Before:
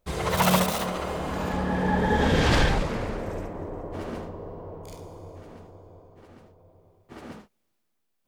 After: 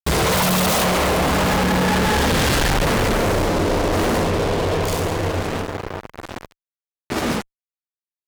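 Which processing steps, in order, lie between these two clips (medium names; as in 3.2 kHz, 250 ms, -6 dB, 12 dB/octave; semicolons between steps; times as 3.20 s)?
fuzz box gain 47 dB, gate -45 dBFS; Chebyshev shaper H 5 -17 dB, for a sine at -9.5 dBFS; trim -3 dB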